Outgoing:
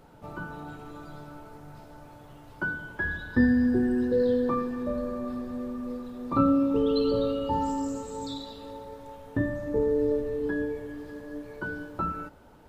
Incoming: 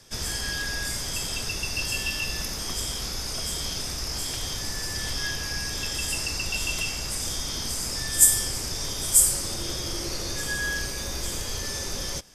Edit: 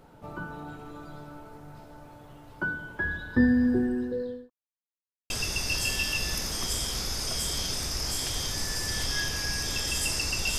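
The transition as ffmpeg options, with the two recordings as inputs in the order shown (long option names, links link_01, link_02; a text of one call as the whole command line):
ffmpeg -i cue0.wav -i cue1.wav -filter_complex "[0:a]apad=whole_dur=10.58,atrim=end=10.58,asplit=2[link_01][link_02];[link_01]atrim=end=4.5,asetpts=PTS-STARTPTS,afade=type=out:start_time=3.71:duration=0.79[link_03];[link_02]atrim=start=4.5:end=5.3,asetpts=PTS-STARTPTS,volume=0[link_04];[1:a]atrim=start=1.37:end=6.65,asetpts=PTS-STARTPTS,afade=type=in:duration=0.004:curve=hsin[link_05];[link_03][link_04][link_05]concat=n=3:v=0:a=1" out.wav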